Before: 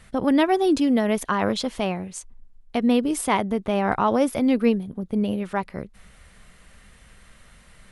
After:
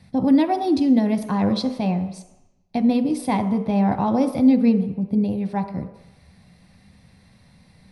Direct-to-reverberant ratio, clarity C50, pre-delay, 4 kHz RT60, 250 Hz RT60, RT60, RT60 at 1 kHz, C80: 6.5 dB, 10.5 dB, 3 ms, 0.95 s, 0.75 s, 0.95 s, 1.0 s, 12.5 dB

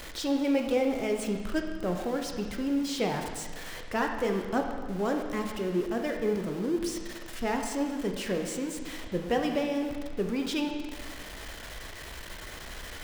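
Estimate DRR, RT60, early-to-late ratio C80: 3.0 dB, 1.6 s, 6.5 dB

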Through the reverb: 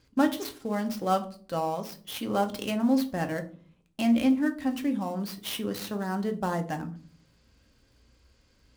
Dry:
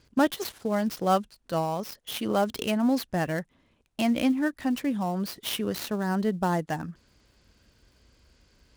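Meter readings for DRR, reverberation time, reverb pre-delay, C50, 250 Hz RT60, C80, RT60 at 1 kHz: 5.5 dB, 0.45 s, 4 ms, 14.5 dB, 0.70 s, 20.0 dB, 0.40 s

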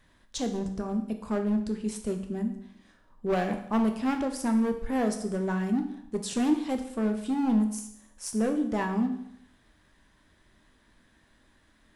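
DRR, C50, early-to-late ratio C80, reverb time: 5.0 dB, 9.5 dB, 12.0 dB, 0.75 s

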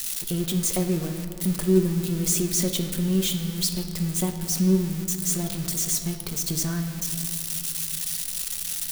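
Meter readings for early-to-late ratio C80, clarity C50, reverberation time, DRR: 8.0 dB, 7.0 dB, 2.8 s, 4.5 dB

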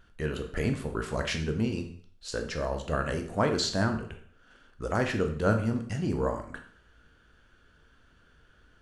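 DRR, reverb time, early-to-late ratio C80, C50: 4.5 dB, 0.55 s, 13.0 dB, 8.5 dB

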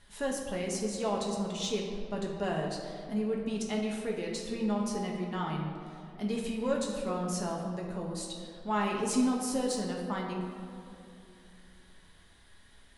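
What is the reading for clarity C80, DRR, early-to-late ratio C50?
4.5 dB, -1.5 dB, 2.5 dB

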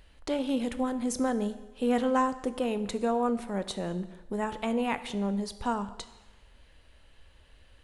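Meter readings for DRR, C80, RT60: 11.5 dB, 15.5 dB, 1.1 s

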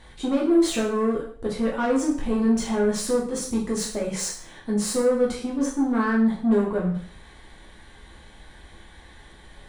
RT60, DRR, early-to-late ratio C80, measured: 0.55 s, -3.5 dB, 10.5 dB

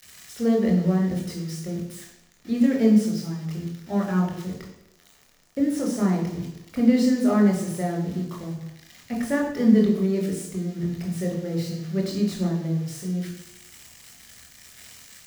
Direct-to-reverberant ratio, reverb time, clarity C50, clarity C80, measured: -1.0 dB, 0.85 s, 5.5 dB, 8.0 dB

